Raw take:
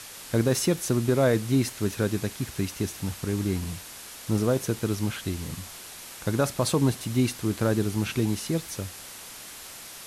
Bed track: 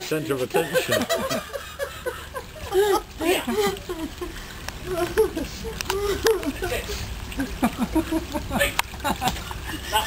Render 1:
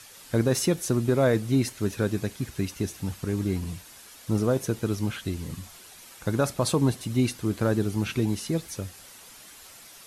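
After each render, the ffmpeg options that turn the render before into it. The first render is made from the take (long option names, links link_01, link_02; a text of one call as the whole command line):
ffmpeg -i in.wav -af "afftdn=noise_reduction=8:noise_floor=-43" out.wav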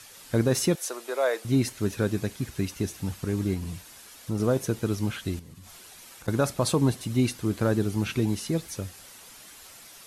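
ffmpeg -i in.wav -filter_complex "[0:a]asettb=1/sr,asplit=3[link_01][link_02][link_03];[link_01]atrim=end=0.754[link_04];[link_02]atrim=start=0.75:end=1.45,asetpts=PTS-STARTPTS,afade=type=in:duration=0.004:curve=qsin,afade=type=out:start_time=0.696:duration=0.004:curve=qsin,highpass=frequency=500:width=0.5412,highpass=frequency=500:width=1.3066[link_05];[link_03]atrim=start=1.446[link_06];[link_04][link_05]acrossfade=duration=0.004:curve1=hsin:curve2=qsin[link_07];[link_07][link_06]acrossfade=duration=0.004:curve1=qsin:curve2=hsin,asettb=1/sr,asplit=3[link_08][link_09][link_10];[link_08]atrim=end=3.544[link_11];[link_09]atrim=start=3.54:end=4.4,asetpts=PTS-STARTPTS,afade=type=in:duration=0.004:curve=qsin,afade=type=out:start_time=0.856:duration=0.004:curve=qsin,acompressor=threshold=-31dB:ratio=1.5:attack=3.2:release=140:knee=1:detection=peak[link_12];[link_10]atrim=start=4.396[link_13];[link_11][link_12]acrossfade=duration=0.004:curve1=hsin:curve2=qsin[link_14];[link_14][link_13]acrossfade=duration=0.004:curve1=qsin:curve2=hsin,asettb=1/sr,asplit=3[link_15][link_16][link_17];[link_15]atrim=end=5.394[link_18];[link_16]atrim=start=5.39:end=6.28,asetpts=PTS-STARTPTS,afade=type=in:duration=0.004:curve=qsin,afade=type=out:start_time=0.886:duration=0.004:curve=qsin,acompressor=threshold=-42dB:ratio=16:attack=3.2:release=140:knee=1:detection=peak[link_19];[link_17]atrim=start=6.276[link_20];[link_18][link_19]acrossfade=duration=0.004:curve1=hsin:curve2=qsin[link_21];[link_21][link_20]acrossfade=duration=0.004:curve1=qsin:curve2=hsin" out.wav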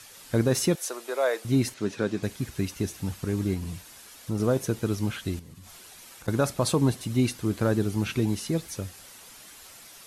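ffmpeg -i in.wav -filter_complex "[0:a]asettb=1/sr,asplit=3[link_01][link_02][link_03];[link_01]atrim=end=1.744[link_04];[link_02]atrim=start=1.74:end=2.23,asetpts=PTS-STARTPTS,afade=type=in:duration=0.004:curve=qsin,afade=type=out:start_time=0.486:duration=0.004:curve=qsin,highpass=170,lowpass=6200[link_05];[link_03]atrim=start=2.226[link_06];[link_04][link_05]acrossfade=duration=0.004:curve1=hsin:curve2=qsin[link_07];[link_07][link_06]acrossfade=duration=0.004:curve1=qsin:curve2=hsin" out.wav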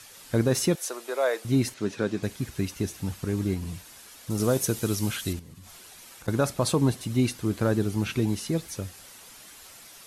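ffmpeg -i in.wav -filter_complex "[0:a]asettb=1/sr,asplit=3[link_01][link_02][link_03];[link_01]atrim=end=4.304[link_04];[link_02]atrim=start=4.3:end=5.33,asetpts=PTS-STARTPTS,afade=type=in:duration=0.004:curve=qsin,afade=type=out:start_time=1.026:duration=0.004:curve=qsin,highshelf=frequency=4100:gain=12[link_05];[link_03]atrim=start=5.326[link_06];[link_04][link_05]acrossfade=duration=0.004:curve1=hsin:curve2=qsin[link_07];[link_07][link_06]acrossfade=duration=0.004:curve1=qsin:curve2=hsin" out.wav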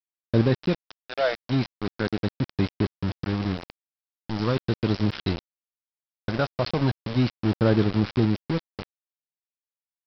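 ffmpeg -i in.wav -af "aphaser=in_gain=1:out_gain=1:delay=1.4:decay=0.42:speed=0.38:type=sinusoidal,aresample=11025,aeval=exprs='val(0)*gte(abs(val(0)),0.0501)':channel_layout=same,aresample=44100" out.wav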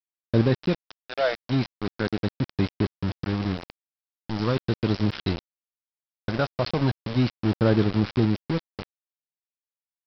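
ffmpeg -i in.wav -af anull out.wav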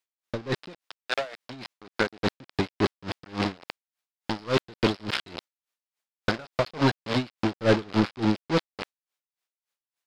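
ffmpeg -i in.wav -filter_complex "[0:a]asplit=2[link_01][link_02];[link_02]highpass=frequency=720:poles=1,volume=21dB,asoftclip=type=tanh:threshold=-9dB[link_03];[link_01][link_03]amix=inputs=2:normalize=0,lowpass=frequency=4900:poles=1,volume=-6dB,aeval=exprs='val(0)*pow(10,-26*(0.5-0.5*cos(2*PI*3.5*n/s))/20)':channel_layout=same" out.wav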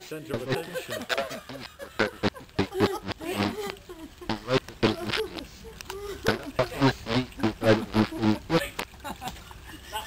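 ffmpeg -i in.wav -i bed.wav -filter_complex "[1:a]volume=-12dB[link_01];[0:a][link_01]amix=inputs=2:normalize=0" out.wav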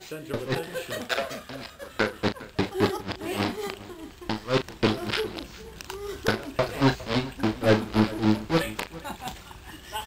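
ffmpeg -i in.wav -filter_complex "[0:a]asplit=2[link_01][link_02];[link_02]adelay=37,volume=-9.5dB[link_03];[link_01][link_03]amix=inputs=2:normalize=0,asplit=2[link_04][link_05];[link_05]adelay=408.2,volume=-18dB,highshelf=frequency=4000:gain=-9.18[link_06];[link_04][link_06]amix=inputs=2:normalize=0" out.wav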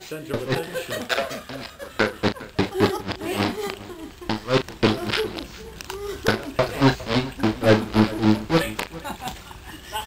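ffmpeg -i in.wav -af "volume=4dB" out.wav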